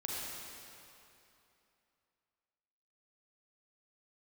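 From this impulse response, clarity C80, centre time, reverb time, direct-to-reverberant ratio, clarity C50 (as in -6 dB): -2.0 dB, 0.176 s, 2.9 s, -5.0 dB, -3.5 dB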